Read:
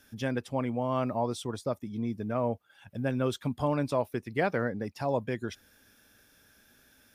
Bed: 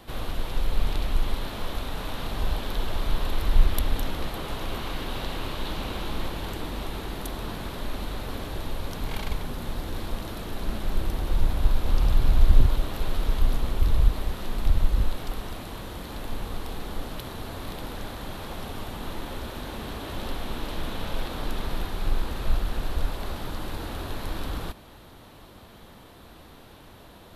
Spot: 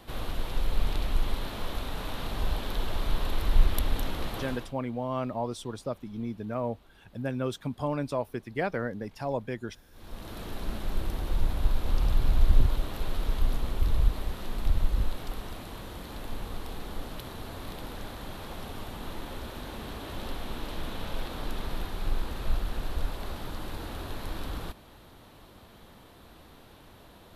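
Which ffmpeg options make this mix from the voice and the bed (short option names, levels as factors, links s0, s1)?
-filter_complex "[0:a]adelay=4200,volume=0.794[s0];[1:a]volume=10,afade=t=out:st=4.4:d=0.34:silence=0.0630957,afade=t=in:st=9.92:d=0.51:silence=0.0749894[s1];[s0][s1]amix=inputs=2:normalize=0"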